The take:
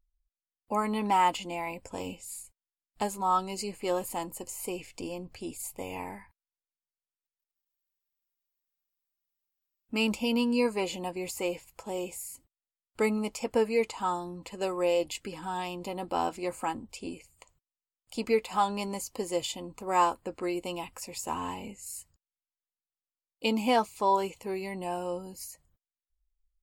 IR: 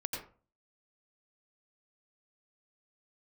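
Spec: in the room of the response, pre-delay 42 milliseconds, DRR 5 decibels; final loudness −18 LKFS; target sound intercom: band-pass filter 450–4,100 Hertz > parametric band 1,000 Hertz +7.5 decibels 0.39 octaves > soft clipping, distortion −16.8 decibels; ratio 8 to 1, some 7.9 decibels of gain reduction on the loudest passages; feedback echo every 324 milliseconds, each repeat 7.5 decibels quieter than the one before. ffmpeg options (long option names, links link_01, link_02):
-filter_complex "[0:a]acompressor=threshold=-28dB:ratio=8,aecho=1:1:324|648|972|1296|1620:0.422|0.177|0.0744|0.0312|0.0131,asplit=2[link_01][link_02];[1:a]atrim=start_sample=2205,adelay=42[link_03];[link_02][link_03]afir=irnorm=-1:irlink=0,volume=-7dB[link_04];[link_01][link_04]amix=inputs=2:normalize=0,highpass=450,lowpass=4100,equalizer=frequency=1000:width_type=o:width=0.39:gain=7.5,asoftclip=threshold=-23dB,volume=16.5dB"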